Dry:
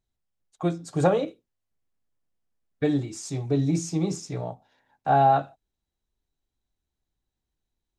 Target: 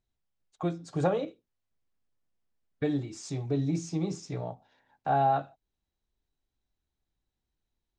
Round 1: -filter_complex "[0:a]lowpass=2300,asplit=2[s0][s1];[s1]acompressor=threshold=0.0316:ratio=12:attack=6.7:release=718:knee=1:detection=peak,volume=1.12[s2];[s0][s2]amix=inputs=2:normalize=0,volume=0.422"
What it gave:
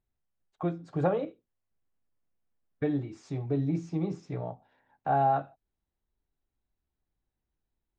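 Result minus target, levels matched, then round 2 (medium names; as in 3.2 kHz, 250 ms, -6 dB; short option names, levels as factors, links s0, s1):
8 kHz band -15.5 dB
-filter_complex "[0:a]lowpass=6100,asplit=2[s0][s1];[s1]acompressor=threshold=0.0316:ratio=12:attack=6.7:release=718:knee=1:detection=peak,volume=1.12[s2];[s0][s2]amix=inputs=2:normalize=0,volume=0.422"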